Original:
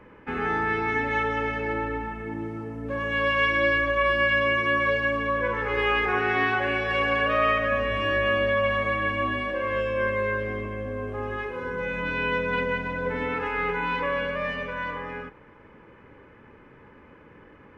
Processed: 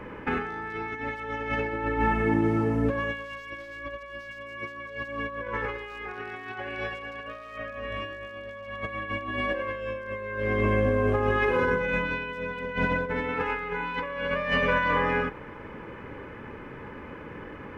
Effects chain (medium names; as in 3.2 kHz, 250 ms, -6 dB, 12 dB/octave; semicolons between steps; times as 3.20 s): hard clipper -16 dBFS, distortion -24 dB; compressor with a negative ratio -32 dBFS, ratio -0.5; trim +3.5 dB